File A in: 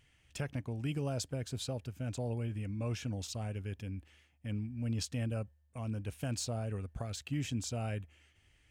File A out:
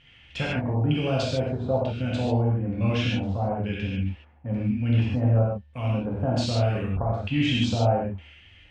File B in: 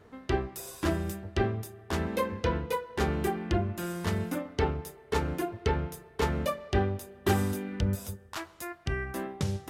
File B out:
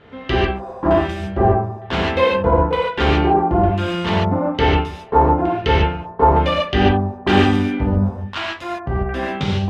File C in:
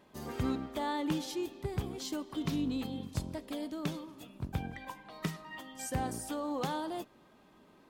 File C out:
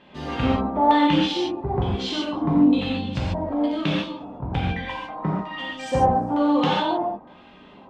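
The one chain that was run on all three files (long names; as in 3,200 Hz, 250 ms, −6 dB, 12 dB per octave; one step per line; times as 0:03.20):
auto-filter low-pass square 1.1 Hz 900–3,100 Hz
reverb whose tail is shaped and stops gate 170 ms flat, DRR −5 dB
level +6.5 dB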